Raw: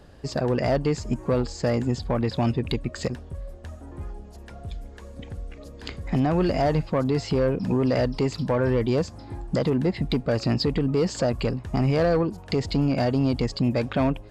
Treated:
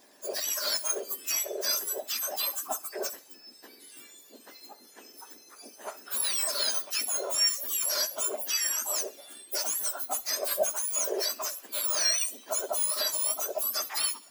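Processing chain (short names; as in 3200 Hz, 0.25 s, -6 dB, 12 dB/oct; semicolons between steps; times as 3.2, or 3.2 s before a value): spectrum mirrored in octaves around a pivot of 1700 Hz; thinning echo 65 ms, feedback 43%, level -19.5 dB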